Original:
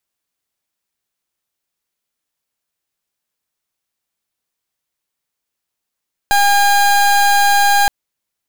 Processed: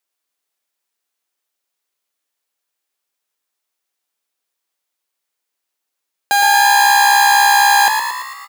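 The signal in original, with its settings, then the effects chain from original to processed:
pulse wave 809 Hz, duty 29% −11.5 dBFS 1.57 s
high-pass filter 310 Hz 12 dB per octave
echo with shifted repeats 113 ms, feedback 60%, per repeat +64 Hz, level −6 dB
rectangular room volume 3,300 cubic metres, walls mixed, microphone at 0.32 metres

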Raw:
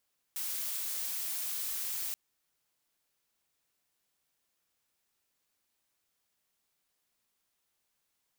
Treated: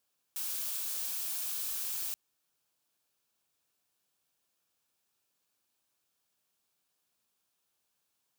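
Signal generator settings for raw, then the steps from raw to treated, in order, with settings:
noise blue, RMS −36 dBFS 1.78 s
high-pass filter 69 Hz
parametric band 2,000 Hz −8.5 dB 0.2 octaves

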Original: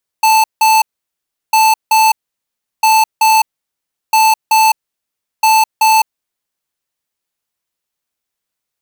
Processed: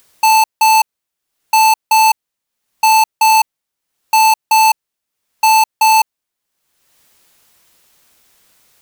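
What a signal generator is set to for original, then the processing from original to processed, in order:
beeps in groups square 879 Hz, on 0.21 s, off 0.17 s, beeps 2, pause 0.71 s, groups 5, −9 dBFS
upward compression, threshold −33 dBFS

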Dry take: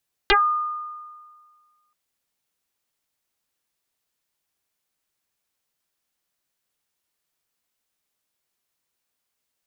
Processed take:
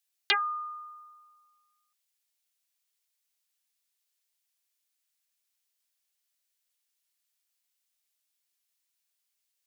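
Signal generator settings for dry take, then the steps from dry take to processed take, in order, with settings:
two-operator FM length 1.63 s, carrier 1,220 Hz, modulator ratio 0.33, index 9, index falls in 0.16 s exponential, decay 1.73 s, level −12 dB
high-pass filter 870 Hz 12 dB per octave
parametric band 1,100 Hz −10 dB 1.8 octaves

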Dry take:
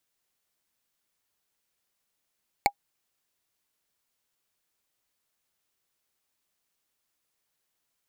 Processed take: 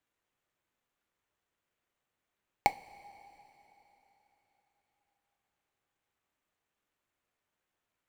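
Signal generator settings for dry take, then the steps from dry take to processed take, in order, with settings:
struck wood, lowest mode 809 Hz, decay 0.07 s, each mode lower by 2 dB, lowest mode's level −12 dB
running median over 9 samples
coupled-rooms reverb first 0.25 s, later 3.9 s, from −18 dB, DRR 10.5 dB

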